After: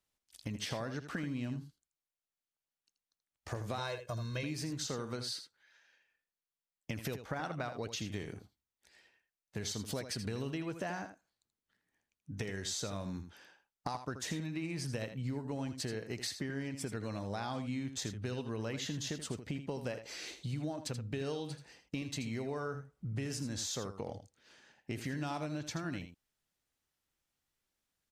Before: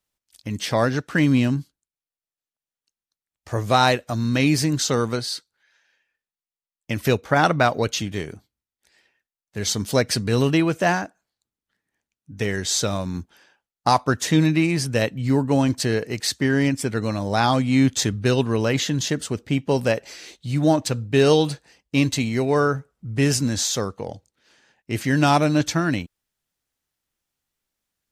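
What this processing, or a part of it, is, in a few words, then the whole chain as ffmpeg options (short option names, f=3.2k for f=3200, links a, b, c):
serial compression, peaks first: -filter_complex "[0:a]asettb=1/sr,asplit=3[a][b][c];[a]atrim=end=3.784[d];[b]atrim=start=3.78:end=4.43,asetpts=PTS-STARTPTS,afade=t=in:d=0.004:c=qsin,afade=t=out:st=0.646:d=0.004:c=qsin,aecho=1:1:1.9:0.84,atrim=end_sample=28665[e];[c]atrim=start=4.426[f];[d][e]acrossfade=d=0.004:c1=hsin:c2=qsin[g];[g][f]acrossfade=d=0.004:c1=qsin:c2=hsin,highshelf=f=10k:g=-4.5,acompressor=threshold=-29dB:ratio=5,acompressor=threshold=-35dB:ratio=2,aecho=1:1:81:0.316,volume=-3.5dB"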